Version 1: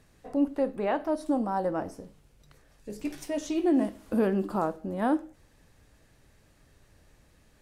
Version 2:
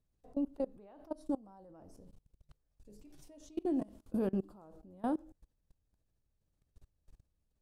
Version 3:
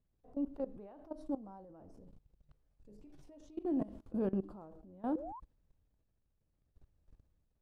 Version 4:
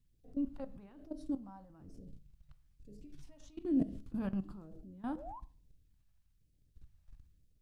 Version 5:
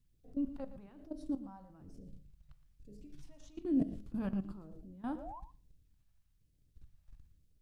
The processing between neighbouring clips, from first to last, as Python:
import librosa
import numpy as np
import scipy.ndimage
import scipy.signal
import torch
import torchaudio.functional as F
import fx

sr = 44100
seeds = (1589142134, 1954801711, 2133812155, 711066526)

y1 = fx.low_shelf(x, sr, hz=110.0, db=12.0)
y1 = fx.level_steps(y1, sr, step_db=24)
y1 = fx.peak_eq(y1, sr, hz=1900.0, db=-8.5, octaves=1.1)
y1 = F.gain(torch.from_numpy(y1), -7.0).numpy()
y2 = fx.spec_paint(y1, sr, seeds[0], shape='rise', start_s=5.15, length_s=0.25, low_hz=470.0, high_hz=1100.0, level_db=-50.0)
y2 = fx.transient(y2, sr, attack_db=-4, sustain_db=6)
y2 = fx.lowpass(y2, sr, hz=1700.0, slope=6)
y3 = fx.phaser_stages(y2, sr, stages=2, low_hz=380.0, high_hz=1000.0, hz=1.1, feedback_pct=25)
y3 = fx.room_shoebox(y3, sr, seeds[1], volume_m3=270.0, walls='furnished', distance_m=0.31)
y3 = F.gain(torch.from_numpy(y3), 5.5).numpy()
y4 = y3 + 10.0 ** (-14.5 / 20.0) * np.pad(y3, (int(116 * sr / 1000.0), 0))[:len(y3)]